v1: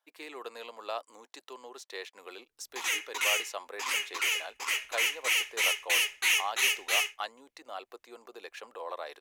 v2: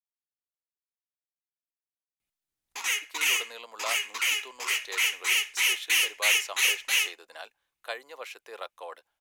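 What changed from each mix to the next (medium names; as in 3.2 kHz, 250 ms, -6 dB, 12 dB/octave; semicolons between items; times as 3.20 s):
speech: entry +2.95 s; master: add tilt shelf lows -3.5 dB, about 930 Hz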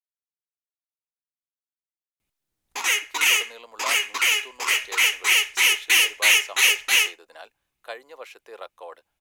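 background +9.0 dB; master: add tilt shelf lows +3.5 dB, about 930 Hz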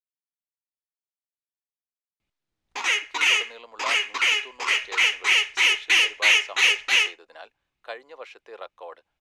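master: add low-pass 4.8 kHz 12 dB/octave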